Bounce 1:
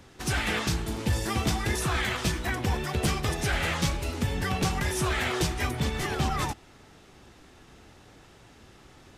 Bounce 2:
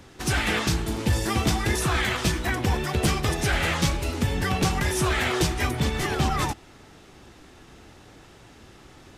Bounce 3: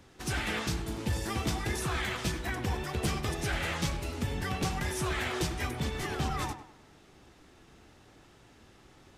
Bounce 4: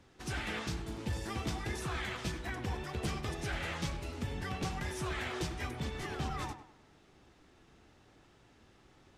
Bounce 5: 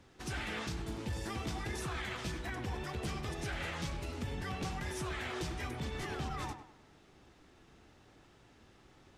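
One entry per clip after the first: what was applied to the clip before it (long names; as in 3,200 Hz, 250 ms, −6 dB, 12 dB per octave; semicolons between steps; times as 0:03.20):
parametric band 320 Hz +2 dB 0.36 octaves; level +3.5 dB
tape delay 96 ms, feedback 40%, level −9.5 dB, low-pass 2,200 Hz; level −8.5 dB
high-shelf EQ 11,000 Hz −11 dB; level −5 dB
brickwall limiter −31.5 dBFS, peak gain reduction 4.5 dB; level +1 dB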